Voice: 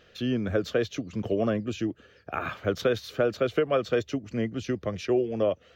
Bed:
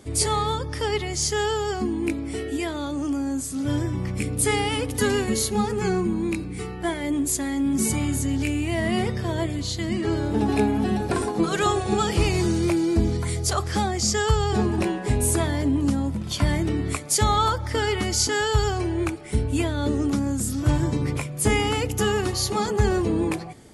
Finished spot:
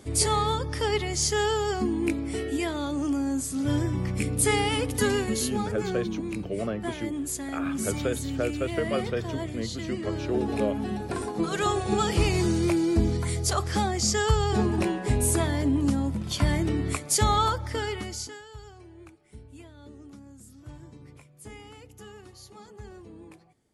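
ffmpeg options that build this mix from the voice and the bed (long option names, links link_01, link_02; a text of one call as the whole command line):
ffmpeg -i stem1.wav -i stem2.wav -filter_complex "[0:a]adelay=5200,volume=-4.5dB[link_01];[1:a]volume=4.5dB,afade=type=out:start_time=4.84:duration=0.92:silence=0.473151,afade=type=in:start_time=11.08:duration=0.97:silence=0.530884,afade=type=out:start_time=17.37:duration=1.05:silence=0.0841395[link_02];[link_01][link_02]amix=inputs=2:normalize=0" out.wav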